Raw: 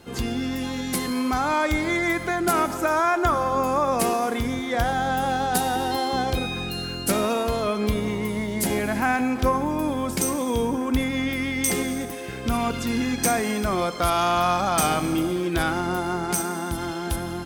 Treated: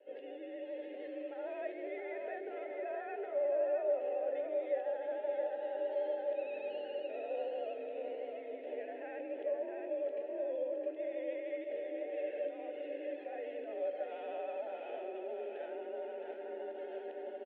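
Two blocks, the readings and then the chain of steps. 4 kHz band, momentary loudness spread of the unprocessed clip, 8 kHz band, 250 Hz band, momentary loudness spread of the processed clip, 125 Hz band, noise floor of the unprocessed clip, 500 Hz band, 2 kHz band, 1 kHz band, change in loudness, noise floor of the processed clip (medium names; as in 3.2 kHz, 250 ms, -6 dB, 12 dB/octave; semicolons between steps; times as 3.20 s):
under -25 dB, 6 LU, under -40 dB, -25.0 dB, 8 LU, under -40 dB, -32 dBFS, -8.5 dB, -23.5 dB, -23.5 dB, -15.5 dB, -47 dBFS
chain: recorder AGC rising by 13 dB/s; peaking EQ 1.9 kHz -12.5 dB 2.9 oct; peak limiter -23.5 dBFS, peak gain reduction 11.5 dB; vibrato 13 Hz 57 cents; vowel filter e; flange 0.2 Hz, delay 9.5 ms, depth 3.7 ms, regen -79%; distance through air 58 m; feedback delay 665 ms, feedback 42%, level -5 dB; mistuned SSB +52 Hz 250–3100 Hz; trim +7.5 dB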